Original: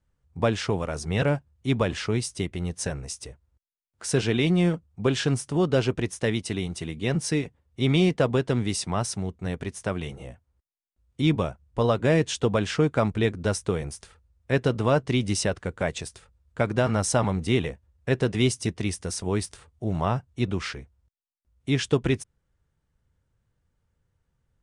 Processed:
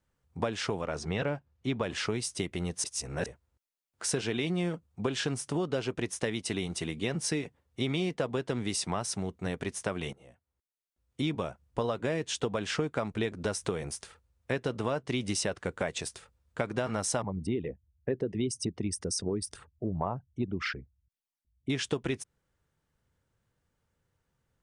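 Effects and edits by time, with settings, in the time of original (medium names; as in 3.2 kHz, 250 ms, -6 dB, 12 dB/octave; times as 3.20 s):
0.81–1.83 s: distance through air 86 m
2.84–3.26 s: reverse
10.13–11.42 s: fade in, from -19 dB
13.32–13.78 s: upward compressor, threshold -29 dBFS
17.22–21.70 s: resonances exaggerated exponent 2
whole clip: bass shelf 120 Hz -12 dB; compression, threshold -29 dBFS; trim +1.5 dB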